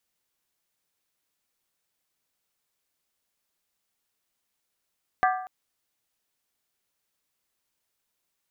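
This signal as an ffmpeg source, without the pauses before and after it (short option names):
-f lavfi -i "aevalsrc='0.126*pow(10,-3*t/0.68)*sin(2*PI*743*t)+0.0841*pow(10,-3*t/0.539)*sin(2*PI*1184.3*t)+0.0562*pow(10,-3*t/0.465)*sin(2*PI*1587*t)+0.0376*pow(10,-3*t/0.449)*sin(2*PI*1705.9*t)+0.0251*pow(10,-3*t/0.417)*sin(2*PI*1971.2*t)':d=0.24:s=44100"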